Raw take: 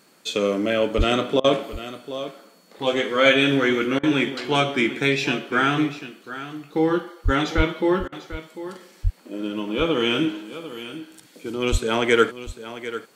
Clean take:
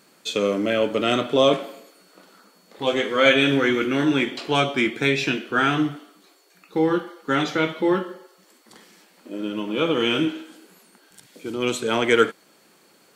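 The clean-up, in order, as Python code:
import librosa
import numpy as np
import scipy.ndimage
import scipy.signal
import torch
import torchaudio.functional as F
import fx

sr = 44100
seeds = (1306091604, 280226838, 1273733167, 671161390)

y = fx.fix_deplosive(x, sr, at_s=(0.97, 7.24, 7.56, 9.03, 11.71))
y = fx.fix_interpolate(y, sr, at_s=(1.4, 3.99, 8.08), length_ms=42.0)
y = fx.fix_echo_inverse(y, sr, delay_ms=746, level_db=-13.5)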